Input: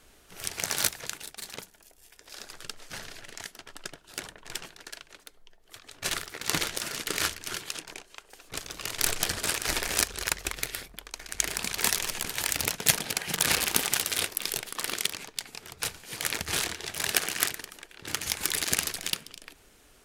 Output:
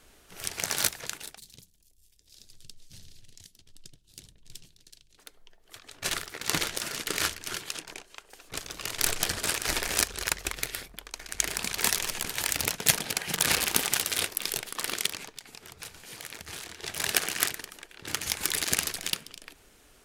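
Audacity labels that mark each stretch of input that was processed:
1.380000	5.180000	EQ curve 110 Hz 0 dB, 760 Hz -26 dB, 1400 Hz -30 dB, 3800 Hz -9 dB
15.360000	16.830000	compressor 2.5:1, threshold -42 dBFS

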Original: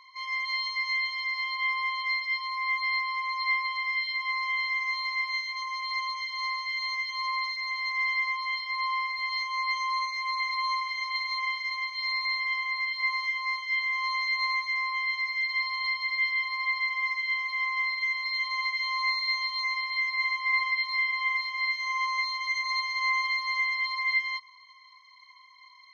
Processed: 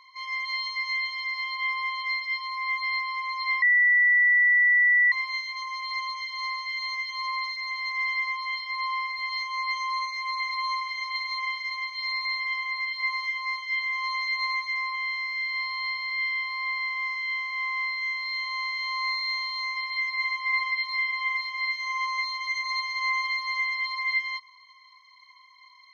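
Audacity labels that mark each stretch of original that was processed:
3.620000	5.120000	bleep 1960 Hz -16.5 dBFS
14.950000	19.760000	time blur width 0.101 s

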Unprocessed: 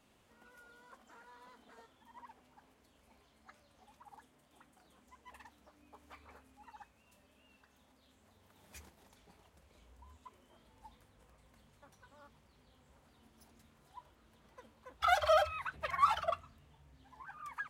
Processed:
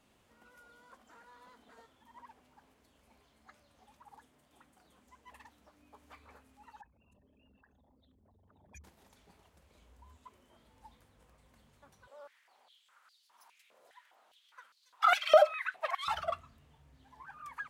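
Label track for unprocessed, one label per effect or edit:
6.810000	8.840000	formant sharpening exponent 3
12.070000	16.080000	stepped high-pass 4.9 Hz 550–4400 Hz

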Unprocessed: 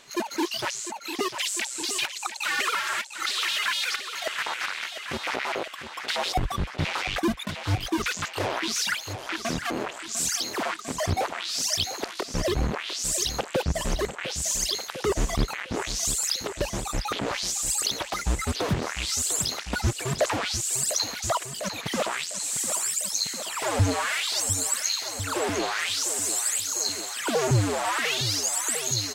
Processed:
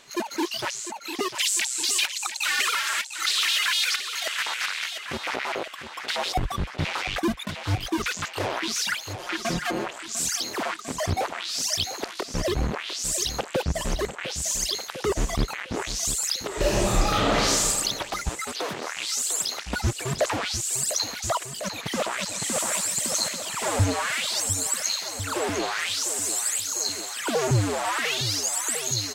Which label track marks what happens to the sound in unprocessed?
1.350000	4.980000	tilt shelf lows -6 dB, about 1400 Hz
9.190000	9.870000	comb 5.6 ms, depth 68%
16.470000	17.630000	reverb throw, RT60 1.6 s, DRR -6.5 dB
18.290000	19.570000	Bessel high-pass 440 Hz
21.620000	22.720000	echo throw 0.56 s, feedback 60%, level -3 dB

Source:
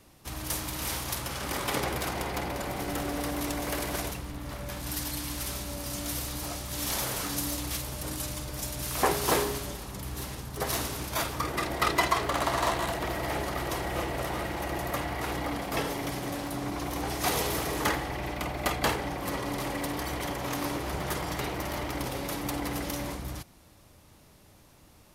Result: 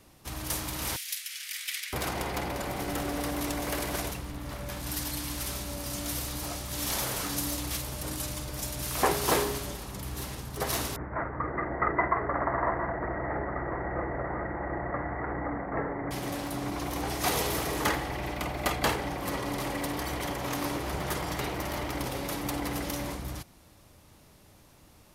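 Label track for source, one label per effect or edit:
0.960000	1.930000	steep high-pass 1900 Hz
10.960000	16.110000	Chebyshev low-pass 2000 Hz, order 6

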